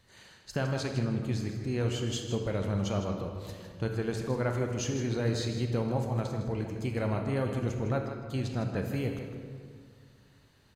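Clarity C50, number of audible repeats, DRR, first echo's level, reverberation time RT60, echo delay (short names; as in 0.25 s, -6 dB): 4.0 dB, 1, 2.5 dB, -9.5 dB, 2.0 s, 0.157 s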